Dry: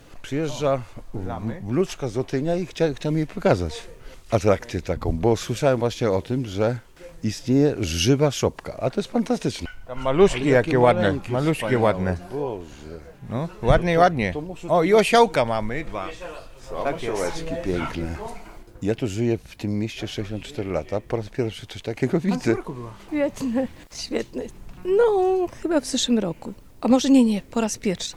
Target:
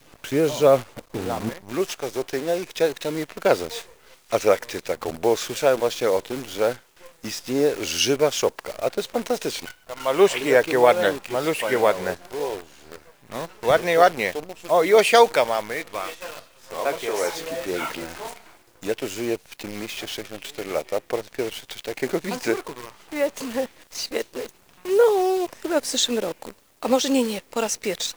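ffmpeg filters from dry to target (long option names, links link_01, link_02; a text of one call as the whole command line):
ffmpeg -i in.wav -af "asetnsamples=nb_out_samples=441:pad=0,asendcmd='1.49 highpass f 950',highpass=frequency=200:poles=1,adynamicequalizer=threshold=0.0112:dfrequency=460:dqfactor=1.5:tfrequency=460:tqfactor=1.5:attack=5:release=100:ratio=0.375:range=3:mode=boostabove:tftype=bell,acrusher=bits=7:dc=4:mix=0:aa=0.000001,volume=3dB" out.wav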